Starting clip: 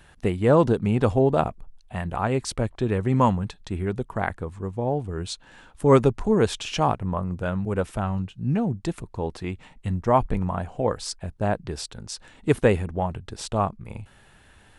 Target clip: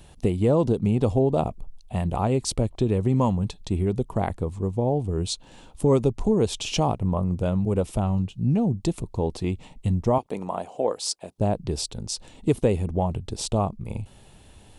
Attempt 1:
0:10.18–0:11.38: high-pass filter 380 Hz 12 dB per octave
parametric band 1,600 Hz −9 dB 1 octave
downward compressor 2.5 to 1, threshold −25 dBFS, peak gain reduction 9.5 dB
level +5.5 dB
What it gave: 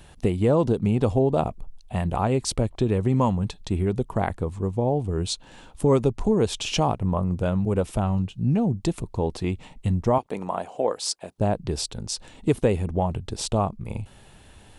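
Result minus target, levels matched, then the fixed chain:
2,000 Hz band +3.5 dB
0:10.18–0:11.38: high-pass filter 380 Hz 12 dB per octave
parametric band 1,600 Hz −15.5 dB 1 octave
downward compressor 2.5 to 1, threshold −25 dBFS, peak gain reduction 9 dB
level +5.5 dB

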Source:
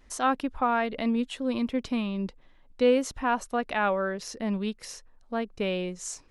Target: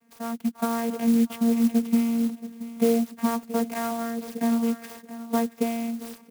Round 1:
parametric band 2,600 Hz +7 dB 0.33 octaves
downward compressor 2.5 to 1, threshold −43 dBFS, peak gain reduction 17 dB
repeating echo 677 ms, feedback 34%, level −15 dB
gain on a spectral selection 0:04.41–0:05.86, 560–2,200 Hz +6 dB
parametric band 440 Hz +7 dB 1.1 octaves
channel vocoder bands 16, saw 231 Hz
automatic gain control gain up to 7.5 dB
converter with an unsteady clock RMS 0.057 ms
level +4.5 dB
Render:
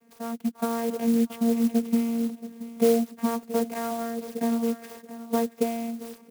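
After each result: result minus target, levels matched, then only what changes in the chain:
downward compressor: peak gain reduction +4.5 dB; 500 Hz band +3.5 dB
change: downward compressor 2.5 to 1, threshold −35.5 dBFS, peak gain reduction 12.5 dB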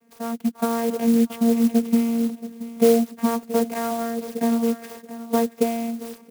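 500 Hz band +3.5 dB
remove: second parametric band 440 Hz +7 dB 1.1 octaves

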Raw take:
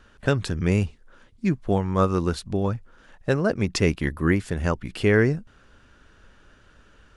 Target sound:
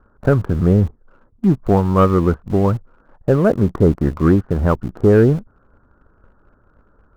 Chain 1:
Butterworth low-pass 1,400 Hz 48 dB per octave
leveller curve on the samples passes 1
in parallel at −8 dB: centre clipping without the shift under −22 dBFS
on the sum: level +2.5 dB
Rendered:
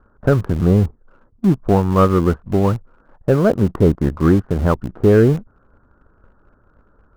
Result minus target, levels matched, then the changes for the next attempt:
centre clipping without the shift: distortion +9 dB
change: centre clipping without the shift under −29 dBFS

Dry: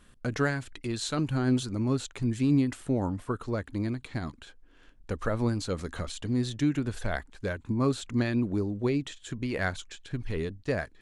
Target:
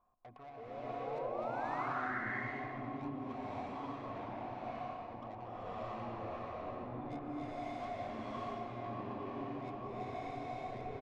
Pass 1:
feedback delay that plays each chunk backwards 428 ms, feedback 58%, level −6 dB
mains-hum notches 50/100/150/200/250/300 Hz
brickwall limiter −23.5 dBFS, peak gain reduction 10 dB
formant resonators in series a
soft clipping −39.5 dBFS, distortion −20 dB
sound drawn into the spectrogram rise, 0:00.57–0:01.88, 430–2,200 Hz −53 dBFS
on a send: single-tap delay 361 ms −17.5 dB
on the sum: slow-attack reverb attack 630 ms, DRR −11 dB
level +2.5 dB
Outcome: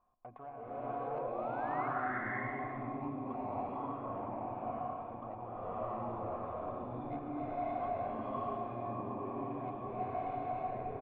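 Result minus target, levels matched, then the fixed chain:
soft clipping: distortion −12 dB
feedback delay that plays each chunk backwards 428 ms, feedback 58%, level −6 dB
mains-hum notches 50/100/150/200/250/300 Hz
brickwall limiter −23.5 dBFS, peak gain reduction 10 dB
formant resonators in series a
soft clipping −51 dBFS, distortion −8 dB
sound drawn into the spectrogram rise, 0:00.57–0:01.88, 430–2,200 Hz −53 dBFS
on a send: single-tap delay 361 ms −17.5 dB
on the sum: slow-attack reverb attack 630 ms, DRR −11 dB
level +2.5 dB

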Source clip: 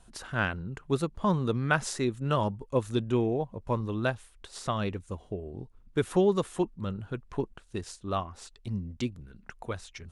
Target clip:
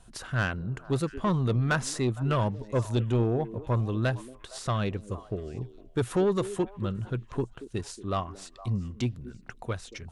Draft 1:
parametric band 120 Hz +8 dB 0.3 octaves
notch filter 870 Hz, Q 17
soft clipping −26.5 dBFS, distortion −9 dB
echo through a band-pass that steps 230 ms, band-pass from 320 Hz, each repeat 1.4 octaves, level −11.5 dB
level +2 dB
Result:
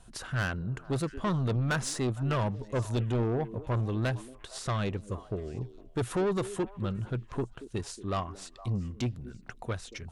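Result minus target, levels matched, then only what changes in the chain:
soft clipping: distortion +6 dB
change: soft clipping −20.5 dBFS, distortion −14 dB

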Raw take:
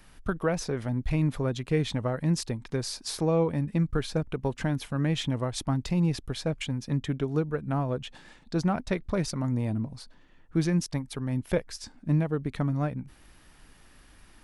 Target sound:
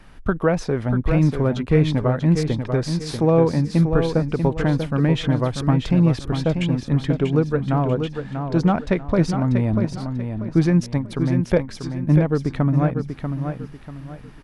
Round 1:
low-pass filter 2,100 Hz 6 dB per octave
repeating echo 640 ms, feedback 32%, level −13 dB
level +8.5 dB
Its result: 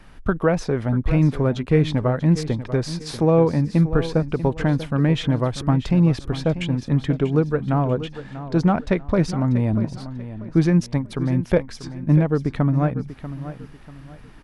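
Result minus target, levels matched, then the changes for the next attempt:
echo-to-direct −6 dB
change: repeating echo 640 ms, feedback 32%, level −7 dB

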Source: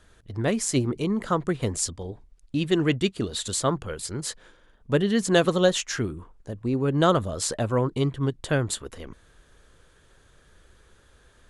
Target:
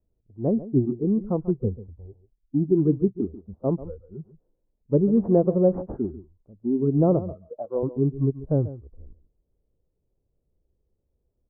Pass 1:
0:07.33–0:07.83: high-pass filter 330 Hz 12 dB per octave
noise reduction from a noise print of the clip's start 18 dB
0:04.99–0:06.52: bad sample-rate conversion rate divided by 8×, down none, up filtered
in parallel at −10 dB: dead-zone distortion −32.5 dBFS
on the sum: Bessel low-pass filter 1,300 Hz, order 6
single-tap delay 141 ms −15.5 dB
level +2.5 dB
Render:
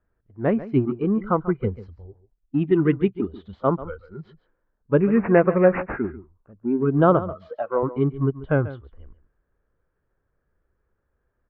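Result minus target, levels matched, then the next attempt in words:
1,000 Hz band +9.5 dB
0:07.33–0:07.83: high-pass filter 330 Hz 12 dB per octave
noise reduction from a noise print of the clip's start 18 dB
0:04.99–0:06.52: bad sample-rate conversion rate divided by 8×, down none, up filtered
in parallel at −10 dB: dead-zone distortion −32.5 dBFS
on the sum: Bessel low-pass filter 450 Hz, order 6
single-tap delay 141 ms −15.5 dB
level +2.5 dB

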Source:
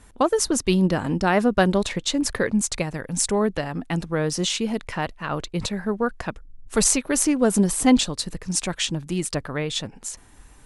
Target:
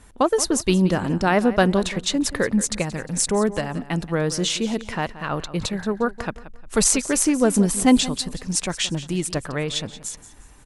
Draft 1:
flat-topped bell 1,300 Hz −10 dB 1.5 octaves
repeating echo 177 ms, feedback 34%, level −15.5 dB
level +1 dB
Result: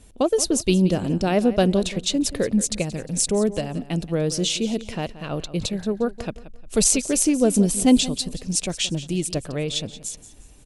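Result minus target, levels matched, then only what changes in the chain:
1,000 Hz band −5.5 dB
remove: flat-topped bell 1,300 Hz −10 dB 1.5 octaves

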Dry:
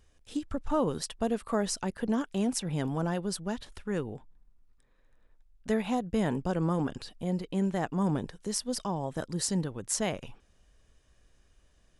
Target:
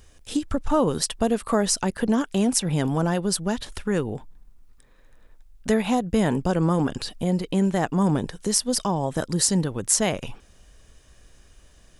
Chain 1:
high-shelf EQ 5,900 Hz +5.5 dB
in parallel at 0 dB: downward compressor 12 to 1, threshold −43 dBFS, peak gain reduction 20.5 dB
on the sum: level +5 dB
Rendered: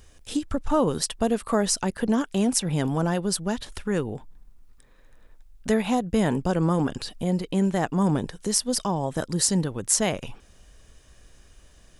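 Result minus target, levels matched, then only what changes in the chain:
downward compressor: peak gain reduction +7.5 dB
change: downward compressor 12 to 1, threshold −35 dBFS, peak gain reduction 13.5 dB

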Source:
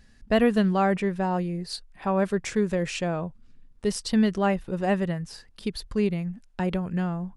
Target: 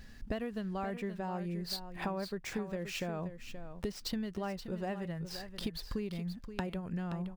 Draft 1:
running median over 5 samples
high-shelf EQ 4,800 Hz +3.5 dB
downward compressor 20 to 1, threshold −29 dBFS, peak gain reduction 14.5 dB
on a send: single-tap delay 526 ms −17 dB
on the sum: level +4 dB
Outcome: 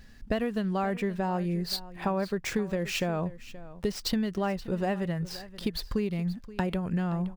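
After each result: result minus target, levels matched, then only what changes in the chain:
downward compressor: peak gain reduction −8.5 dB; echo-to-direct −6.5 dB
change: downward compressor 20 to 1, threshold −38 dBFS, peak gain reduction 23 dB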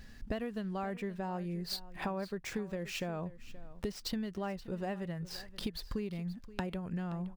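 echo-to-direct −6.5 dB
change: single-tap delay 526 ms −10.5 dB

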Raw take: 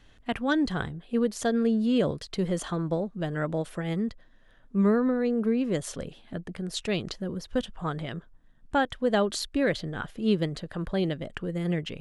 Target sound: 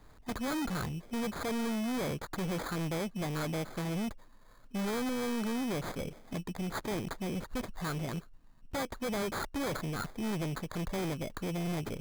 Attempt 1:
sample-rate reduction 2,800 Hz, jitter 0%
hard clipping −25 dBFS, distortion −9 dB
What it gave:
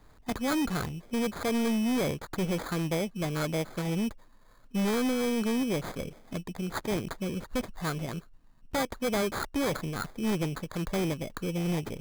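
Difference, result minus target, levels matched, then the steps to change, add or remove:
hard clipping: distortion −5 dB
change: hard clipping −32 dBFS, distortion −5 dB

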